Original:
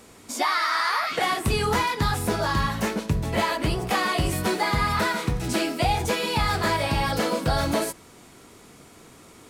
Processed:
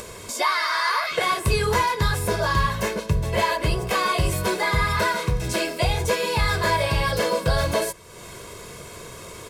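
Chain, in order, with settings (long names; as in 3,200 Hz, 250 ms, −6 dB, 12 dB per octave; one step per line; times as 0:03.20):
comb filter 1.9 ms, depth 72%
upward compression, threshold −29 dBFS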